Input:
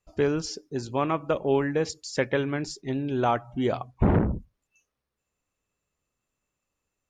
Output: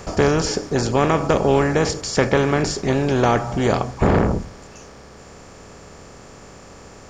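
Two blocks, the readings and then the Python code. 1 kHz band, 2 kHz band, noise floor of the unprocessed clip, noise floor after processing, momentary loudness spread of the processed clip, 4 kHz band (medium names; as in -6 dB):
+8.5 dB, +9.5 dB, -84 dBFS, -43 dBFS, 4 LU, +10.5 dB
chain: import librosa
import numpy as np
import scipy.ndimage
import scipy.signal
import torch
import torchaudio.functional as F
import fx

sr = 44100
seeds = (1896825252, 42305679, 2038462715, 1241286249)

y = fx.bin_compress(x, sr, power=0.4)
y = fx.high_shelf(y, sr, hz=5600.0, db=6.5)
y = fx.rider(y, sr, range_db=10, speed_s=2.0)
y = F.gain(torch.from_numpy(y), 2.5).numpy()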